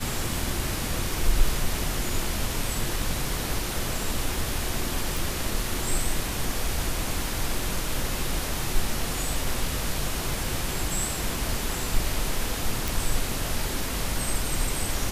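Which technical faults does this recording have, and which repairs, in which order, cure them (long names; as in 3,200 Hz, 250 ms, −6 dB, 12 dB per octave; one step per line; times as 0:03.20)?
0:05.17: click
0:12.88: click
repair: click removal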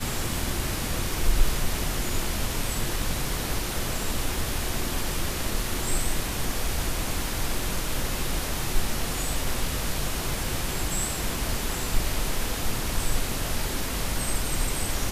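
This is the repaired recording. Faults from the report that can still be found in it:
none of them is left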